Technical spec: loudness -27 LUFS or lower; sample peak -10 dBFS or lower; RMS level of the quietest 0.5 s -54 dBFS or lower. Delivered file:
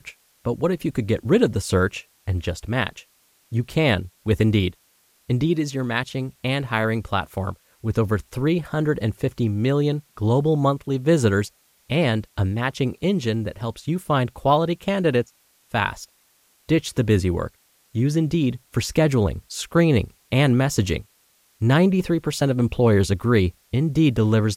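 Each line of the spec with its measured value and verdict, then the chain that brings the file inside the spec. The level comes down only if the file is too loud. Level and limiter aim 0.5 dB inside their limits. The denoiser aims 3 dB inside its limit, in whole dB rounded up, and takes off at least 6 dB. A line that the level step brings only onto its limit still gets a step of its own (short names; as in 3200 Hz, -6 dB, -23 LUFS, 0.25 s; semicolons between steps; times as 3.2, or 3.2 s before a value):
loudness -22.0 LUFS: fail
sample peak -5.0 dBFS: fail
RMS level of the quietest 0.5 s -61 dBFS: OK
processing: gain -5.5 dB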